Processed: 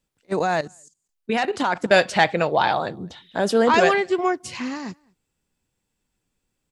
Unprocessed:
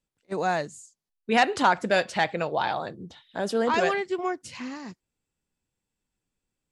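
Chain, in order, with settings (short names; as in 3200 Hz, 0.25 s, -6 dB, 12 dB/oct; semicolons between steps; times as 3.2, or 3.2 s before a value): outdoor echo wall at 36 m, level -29 dB; 0.39–1.91 level quantiser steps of 14 dB; gain +7 dB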